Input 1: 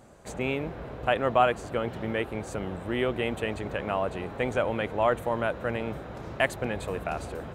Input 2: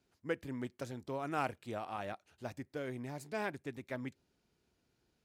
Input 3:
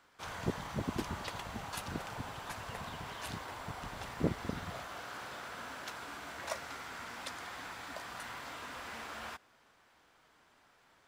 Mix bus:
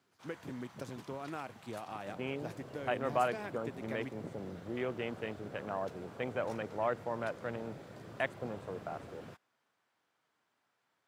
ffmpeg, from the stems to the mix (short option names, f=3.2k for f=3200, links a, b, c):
-filter_complex "[0:a]afwtdn=0.02,adelay=1800,volume=-9dB[a];[1:a]acompressor=threshold=-39dB:ratio=6,volume=0.5dB[b];[2:a]volume=-13.5dB[c];[a][b][c]amix=inputs=3:normalize=0,highpass=f=98:w=0.5412,highpass=f=98:w=1.3066"